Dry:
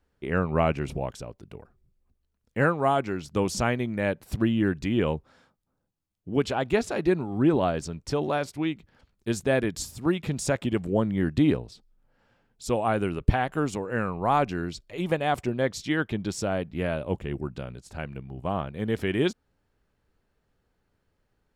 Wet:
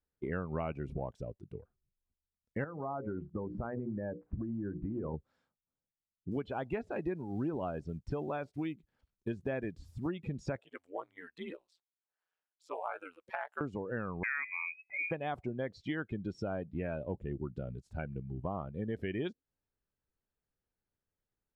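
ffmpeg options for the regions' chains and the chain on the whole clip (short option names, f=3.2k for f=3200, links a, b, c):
-filter_complex "[0:a]asettb=1/sr,asplit=3[a][b][c];[a]atrim=end=2.644[d];[b]atrim=start=2.64:end=5.14,asetpts=PTS-STARTPTS,afade=t=in:d=0.004:c=qsin,afade=t=out:st=2.496:d=0.004:c=qsin,lowpass=f=1.6k:w=0.5412,lowpass=f=1.6k:w=1.3066,bandreject=f=60:t=h:w=6,bandreject=f=120:t=h:w=6,bandreject=f=180:t=h:w=6,bandreject=f=240:t=h:w=6,bandreject=f=300:t=h:w=6,bandreject=f=360:t=h:w=6,bandreject=f=420:t=h:w=6,bandreject=f=480:t=h:w=6,bandreject=f=540:t=h:w=6,acompressor=threshold=-27dB:ratio=16:attack=3.2:release=140:knee=1:detection=peak[e];[c]atrim=start=5.136[f];[d][e]acrossfade=d=0.004:c1=hsin:c2=qsin[g];[g][f]acrossfade=d=0.004:c1=qsin:c2=hsin,asettb=1/sr,asplit=3[h][i][j];[h]atrim=end=6.314[k];[i]atrim=start=6.31:end=10.09,asetpts=PTS-STARTPTS,afade=t=in:d=0.004:c=qsin,afade=t=out:st=3.776:d=0.004:c=qsin,acrossover=split=3600[l][m];[m]acompressor=threshold=-42dB:ratio=4:attack=1:release=60[n];[l][n]amix=inputs=2:normalize=0,acrusher=bits=6:mode=log:mix=0:aa=0.000001[o];[j]atrim=start=10.086[p];[k][o]acrossfade=d=0.004:c1=hsin:c2=qsin[q];[q][p]acrossfade=d=0.004:c1=qsin:c2=hsin,asettb=1/sr,asplit=3[r][s][t];[r]atrim=end=10.614[u];[s]atrim=start=10.61:end=13.61,asetpts=PTS-STARTPTS,afade=t=in:d=0.004:c=qsin,afade=t=out:st=2.996:d=0.004:c=qsin,highpass=880,aeval=exprs='val(0)*sin(2*PI*87*n/s)':c=same[v];[t]atrim=start=13.606[w];[u][v]acrossfade=d=0.004:c1=hsin:c2=qsin[x];[x][w]acrossfade=d=0.004:c1=qsin:c2=hsin,asettb=1/sr,asplit=3[y][z][aa];[y]atrim=end=14.234[ab];[z]atrim=start=14.23:end=15.11,asetpts=PTS-STARTPTS,afade=t=in:d=0.004:c=qsin,afade=t=out:st=0.876:d=0.004:c=qsin,bandreject=f=193.4:t=h:w=4,bandreject=f=386.8:t=h:w=4,bandreject=f=580.2:t=h:w=4,bandreject=f=773.6:t=h:w=4,lowpass=f=2.2k:t=q:w=0.5098,lowpass=f=2.2k:t=q:w=0.6013,lowpass=f=2.2k:t=q:w=0.9,lowpass=f=2.2k:t=q:w=2.563,afreqshift=-2600[ac];[aa]atrim=start=15.106[ad];[ab][ac]acrossfade=d=0.004:c1=hsin:c2=qsin[ae];[ae][ad]acrossfade=d=0.004:c1=qsin:c2=hsin,acrossover=split=5300[af][ag];[ag]acompressor=threshold=-51dB:ratio=4:attack=1:release=60[ah];[af][ah]amix=inputs=2:normalize=0,afftdn=nr=19:nf=-35,acompressor=threshold=-35dB:ratio=4"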